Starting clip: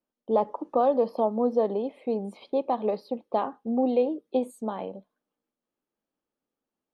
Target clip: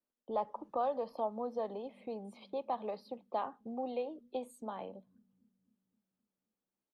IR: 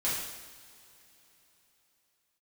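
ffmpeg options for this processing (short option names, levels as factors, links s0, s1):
-filter_complex "[0:a]acrossover=split=150|580|2000[s0][s1][s2][s3];[s0]aecho=1:1:262|524|786|1048|1310|1572|1834:0.335|0.191|0.109|0.062|0.0354|0.0202|0.0115[s4];[s1]acompressor=threshold=0.01:ratio=6[s5];[s4][s5][s2][s3]amix=inputs=4:normalize=0,volume=0.447"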